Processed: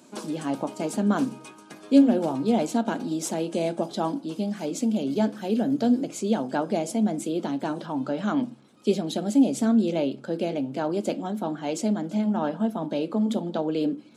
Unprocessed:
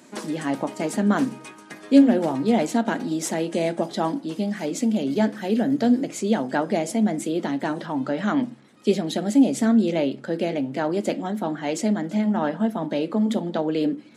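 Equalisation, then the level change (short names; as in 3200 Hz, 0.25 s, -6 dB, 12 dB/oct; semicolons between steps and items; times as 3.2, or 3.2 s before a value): bell 1900 Hz -12.5 dB 0.32 oct; -2.5 dB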